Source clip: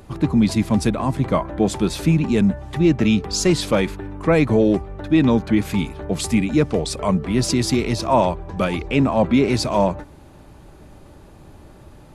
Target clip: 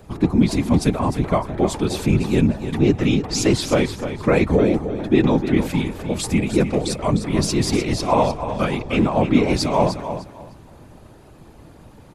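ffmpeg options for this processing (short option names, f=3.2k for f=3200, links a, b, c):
-af "afftfilt=real='hypot(re,im)*cos(2*PI*random(0))':imag='hypot(re,im)*sin(2*PI*random(1))':win_size=512:overlap=0.75,aecho=1:1:303|606|909:0.316|0.0696|0.0153,volume=5.5dB"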